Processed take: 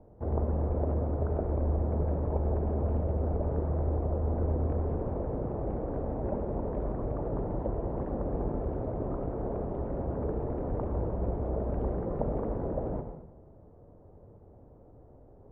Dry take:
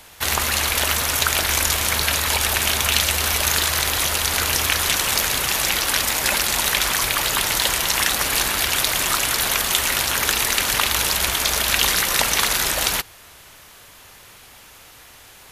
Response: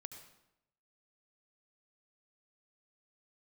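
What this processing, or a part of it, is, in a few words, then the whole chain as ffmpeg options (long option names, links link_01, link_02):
next room: -filter_complex "[0:a]lowpass=frequency=570:width=0.5412,lowpass=frequency=570:width=1.3066[link_01];[1:a]atrim=start_sample=2205[link_02];[link_01][link_02]afir=irnorm=-1:irlink=0,volume=6dB"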